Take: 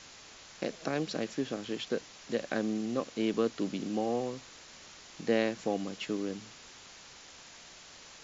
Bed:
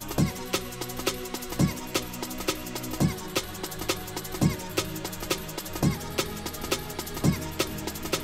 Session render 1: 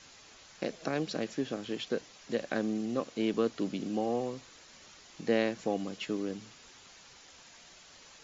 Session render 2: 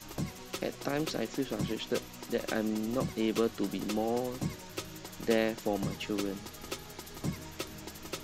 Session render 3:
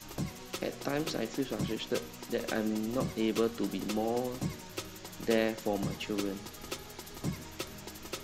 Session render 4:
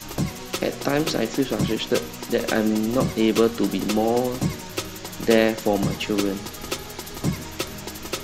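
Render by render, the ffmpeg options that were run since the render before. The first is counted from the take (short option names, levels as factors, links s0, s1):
-af "afftdn=nr=6:nf=-53"
-filter_complex "[1:a]volume=0.266[s0];[0:a][s0]amix=inputs=2:normalize=0"
-af "bandreject=f=78.35:t=h:w=4,bandreject=f=156.7:t=h:w=4,bandreject=f=235.05:t=h:w=4,bandreject=f=313.4:t=h:w=4,bandreject=f=391.75:t=h:w=4,bandreject=f=470.1:t=h:w=4,bandreject=f=548.45:t=h:w=4,bandreject=f=626.8:t=h:w=4,bandreject=f=705.15:t=h:w=4,bandreject=f=783.5:t=h:w=4,bandreject=f=861.85:t=h:w=4,bandreject=f=940.2:t=h:w=4,bandreject=f=1018.55:t=h:w=4,bandreject=f=1096.9:t=h:w=4,bandreject=f=1175.25:t=h:w=4,bandreject=f=1253.6:t=h:w=4,bandreject=f=1331.95:t=h:w=4,bandreject=f=1410.3:t=h:w=4,bandreject=f=1488.65:t=h:w=4,bandreject=f=1567:t=h:w=4,bandreject=f=1645.35:t=h:w=4,bandreject=f=1723.7:t=h:w=4,bandreject=f=1802.05:t=h:w=4,bandreject=f=1880.4:t=h:w=4,bandreject=f=1958.75:t=h:w=4,bandreject=f=2037.1:t=h:w=4,bandreject=f=2115.45:t=h:w=4,bandreject=f=2193.8:t=h:w=4,bandreject=f=2272.15:t=h:w=4"
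-af "volume=3.55"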